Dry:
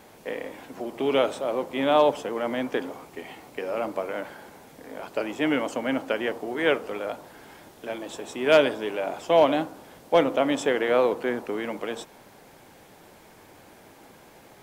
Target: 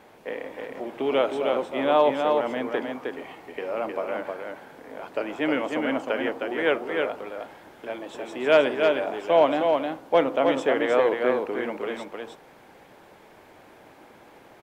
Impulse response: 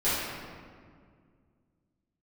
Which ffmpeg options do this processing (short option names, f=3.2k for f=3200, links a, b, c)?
-af "bass=f=250:g=-5,treble=f=4k:g=-10,aecho=1:1:311:0.631"